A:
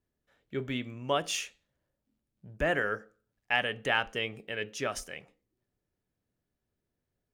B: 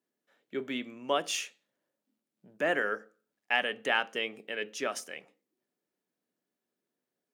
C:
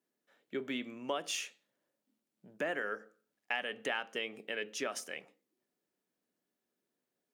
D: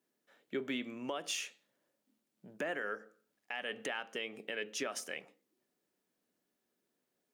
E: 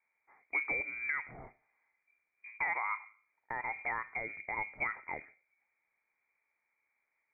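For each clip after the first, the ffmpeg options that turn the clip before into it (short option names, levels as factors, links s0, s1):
-af "highpass=f=210:w=0.5412,highpass=f=210:w=1.3066"
-af "acompressor=threshold=0.02:ratio=3"
-af "alimiter=level_in=1.88:limit=0.0631:level=0:latency=1:release=302,volume=0.531,volume=1.41"
-af "lowpass=f=2200:t=q:w=0.5098,lowpass=f=2200:t=q:w=0.6013,lowpass=f=2200:t=q:w=0.9,lowpass=f=2200:t=q:w=2.563,afreqshift=-2600,volume=1.5"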